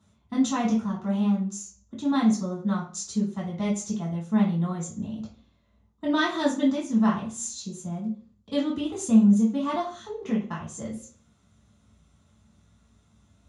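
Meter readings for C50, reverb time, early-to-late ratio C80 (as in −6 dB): 7.0 dB, 0.45 s, 12.0 dB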